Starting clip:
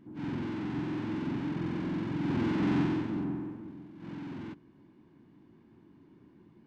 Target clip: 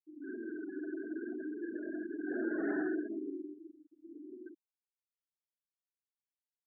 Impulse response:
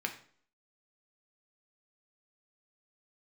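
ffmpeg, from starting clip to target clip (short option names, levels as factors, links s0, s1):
-af "highpass=f=320:w=0.5412,highpass=f=320:w=1.3066,equalizer=f=390:t=q:w=4:g=6,equalizer=f=640:t=q:w=4:g=8,equalizer=f=920:t=q:w=4:g=-9,equalizer=f=1600:t=q:w=4:g=10,lowpass=f=2100:w=0.5412,lowpass=f=2100:w=1.3066,flanger=delay=16:depth=7.8:speed=0.69,afftfilt=real='re*gte(hypot(re,im),0.0224)':imag='im*gte(hypot(re,im),0.0224)':win_size=1024:overlap=0.75"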